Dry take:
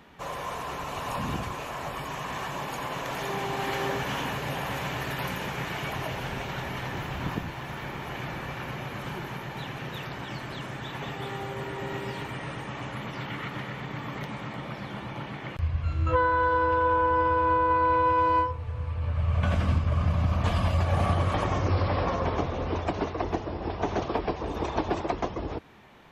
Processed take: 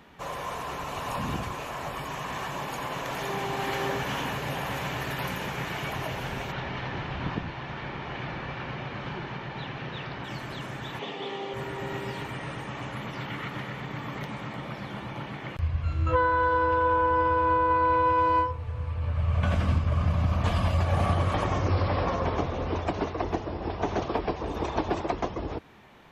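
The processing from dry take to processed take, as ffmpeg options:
-filter_complex "[0:a]asplit=3[a][b][c];[a]afade=t=out:st=6.51:d=0.02[d];[b]lowpass=f=5k:w=0.5412,lowpass=f=5k:w=1.3066,afade=t=in:st=6.51:d=0.02,afade=t=out:st=10.23:d=0.02[e];[c]afade=t=in:st=10.23:d=0.02[f];[d][e][f]amix=inputs=3:normalize=0,asettb=1/sr,asplit=3[g][h][i];[g]atrim=end=10.994[j];[h]atrim=start=10.99:end=11.54,asetpts=PTS-STARTPTS,afade=t=in:d=0.004:c=qsin,afade=t=out:st=0.546:d=0.004:c=qsin,highpass=f=190:w=0.5412,highpass=f=190:w=1.3066,equalizer=f=440:t=q:w=4:g=5,equalizer=f=1.5k:t=q:w=4:g=-8,equalizer=f=3.2k:t=q:w=4:g=6,lowpass=f=6.1k:w=0.5412,lowpass=f=6.1k:w=1.3066[k];[i]atrim=start=11.536[l];[j][k]acrossfade=d=0.004:c1=hsin:c2=qsin[m];[m][l]acrossfade=d=0.004:c1=qsin:c2=hsin"

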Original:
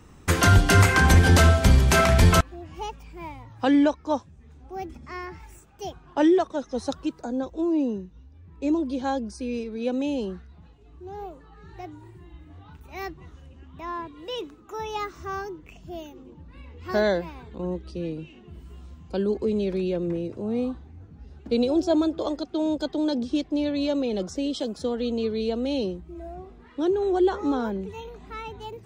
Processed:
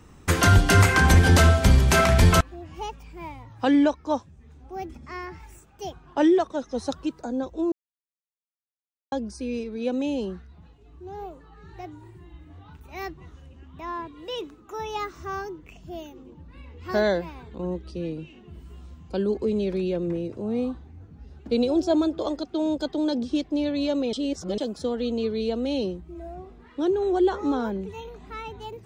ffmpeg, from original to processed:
-filter_complex "[0:a]asplit=5[a][b][c][d][e];[a]atrim=end=7.72,asetpts=PTS-STARTPTS,afade=t=out:st=7.716:d=0.004:c=hsin[f];[b]atrim=start=7.72:end=9.12,asetpts=PTS-STARTPTS,volume=0[g];[c]atrim=start=9.12:end=24.132,asetpts=PTS-STARTPTS,afade=t=in:d=0.004:c=hsin[h];[d]atrim=start=24.128:end=24.582,asetpts=PTS-STARTPTS,areverse[i];[e]atrim=start=24.578[j];[f][g][h]concat=n=3:v=0:a=1[k];[k][i]acrossfade=d=0.004:c1=hsin:c2=hsin[l];[l][j]acrossfade=d=0.004:c1=hsin:c2=hsin"

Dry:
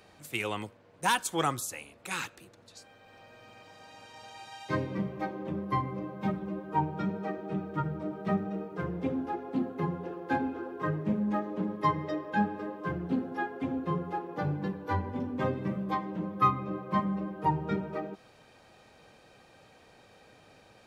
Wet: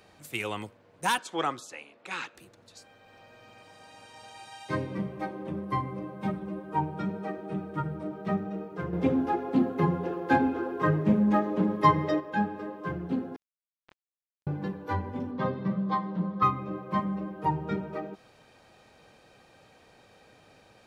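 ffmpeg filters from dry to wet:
-filter_complex "[0:a]asettb=1/sr,asplit=3[a][b][c];[a]atrim=end=1.184[d];[b]atrim=start=1.18:end=2.35,asetpts=PTS-STARTPTS,afade=t=in:d=0.004:c=qsin,afade=t=out:st=1.166:d=0.004:c=qsin,highpass=240,lowpass=4.4k[e];[c]atrim=start=2.346[f];[d][e]acrossfade=d=0.004:c1=hsin:c2=qsin[g];[g][f]acrossfade=d=0.004:c1=qsin:c2=hsin,asettb=1/sr,asplit=3[h][i][j];[h]atrim=end=3.584[k];[i]atrim=start=3.58:end=8.08,asetpts=PTS-STARTPTS,afade=t=in:d=0.004:c=qsin,afade=t=out:st=4.496:d=0.004:c=qsin,equalizer=f=8.9k:w=6.7:g=12[l];[j]atrim=start=8.076[m];[k][l]acrossfade=d=0.004:c1=hsin:c2=qsin[n];[n][m]acrossfade=d=0.004:c1=qsin:c2=hsin,asettb=1/sr,asplit=3[o][p][q];[o]atrim=end=13.364[r];[p]atrim=start=13.36:end=14.47,asetpts=PTS-STARTPTS,afade=t=in:d=0.004:c=qsin,afade=t=out:st=1.106:d=0.004:c=qsin,acrusher=bits=2:mix=0:aa=0.5[s];[q]atrim=start=14.466[t];[r][s]acrossfade=d=0.004:c1=hsin:c2=qsin[u];[u][t]acrossfade=d=0.004:c1=qsin:c2=hsin,asettb=1/sr,asplit=3[v][w][x];[v]atrim=end=15.314[y];[w]atrim=start=15.31:end=16.43,asetpts=PTS-STARTPTS,afade=t=in:d=0.004:c=qsin,afade=t=out:st=1.116:d=0.004:c=qsin,highpass=120,equalizer=f=180:t=q:w=4:g=9,equalizer=f=300:t=q:w=4:g=-6,equalizer=f=1.1k:t=q:w=4:g=5,equalizer=f=2.5k:t=q:w=4:g=-7,equalizer=f=4.1k:t=q:w=4:g=5,lowpass=f=5.3k:w=0.5412,lowpass=f=5.3k:w=1.3066[z];[x]atrim=start=16.426[aa];[y][z]acrossfade=d=0.004:c1=hsin:c2=qsin[ab];[ab][aa]acrossfade=d=0.004:c1=qsin:c2=hsin,asplit=3[ac][ad][ae];[ac]atrim=end=8.932[af];[ad]atrim=start=8.928:end=12.202,asetpts=PTS-STARTPTS,volume=6.5dB[ag];[ae]atrim=start=12.198[ah];[af][ag]acrossfade=d=0.004:c1=hsin:c2=hsin[ai];[ai][ah]acrossfade=d=0.004:c1=hsin:c2=hsin"

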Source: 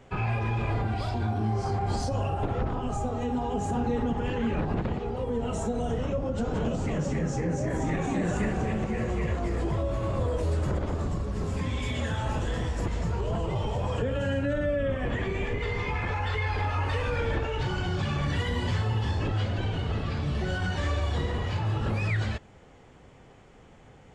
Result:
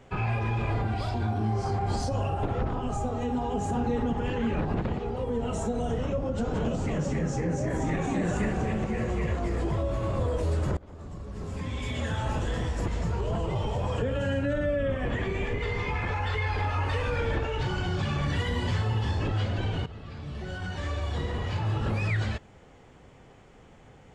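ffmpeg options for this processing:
-filter_complex "[0:a]asplit=3[a][b][c];[a]atrim=end=10.77,asetpts=PTS-STARTPTS,afade=t=out:st=10.766:d=0.004:c=hsin:silence=0.0707946[d];[b]atrim=start=10.77:end=19.86,asetpts=PTS-STARTPTS,afade=t=in:d=1.4:silence=0.0707946,afade=t=out:st=9.086:d=0.004:c=hsin:silence=0.188365[e];[c]atrim=start=19.86,asetpts=PTS-STARTPTS,afade=t=in:d=1.85:silence=0.188365[f];[d][e][f]concat=n=3:v=0:a=1"

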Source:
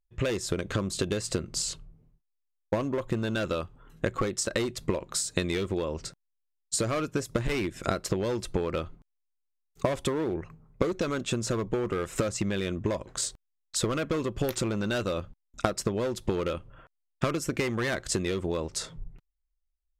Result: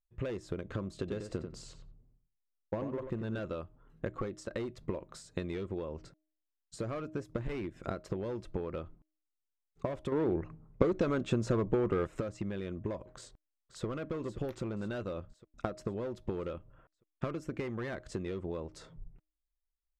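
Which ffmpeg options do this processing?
-filter_complex "[0:a]asettb=1/sr,asplit=3[a][b][c];[a]atrim=end=0.994[d];[b]atrim=start=0.99:end=3.39,asetpts=PTS-STARTPTS,afade=t=in:d=0.004:c=qsin,afade=t=out:st=2.396:d=0.004:c=qsin,asplit=2[e][f];[f]adelay=91,lowpass=f=3k:p=1,volume=-7dB,asplit=2[g][h];[h]adelay=91,lowpass=f=3k:p=1,volume=0.16,asplit=2[i][j];[j]adelay=91,lowpass=f=3k:p=1,volume=0.16[k];[e][g][i][k]amix=inputs=4:normalize=0,atrim=end_sample=105840[l];[c]atrim=start=3.386[m];[d][l]acrossfade=d=0.004:c1=hsin:c2=qsin[n];[n][m]acrossfade=d=0.004:c1=qsin:c2=hsin,asplit=2[o][p];[p]afade=t=in:st=13.16:d=0.01,afade=t=out:st=13.85:d=0.01,aecho=0:1:530|1060|1590|2120|2650|3180:0.266073|0.14634|0.0804869|0.0442678|0.0243473|0.013391[q];[o][q]amix=inputs=2:normalize=0,asplit=3[r][s][t];[r]atrim=end=10.122[u];[s]atrim=start=10.118:end=12.072,asetpts=PTS-STARTPTS,volume=7.5dB[v];[t]atrim=start=12.068[w];[u][v]acrossfade=d=0.004:c1=hsin:c2=hsin[x];[x][w]acrossfade=d=0.004:c1=hsin:c2=hsin,lowpass=f=1.2k:p=1,bandreject=f=311.3:t=h:w=4,bandreject=f=622.6:t=h:w=4,volume=-7.5dB"

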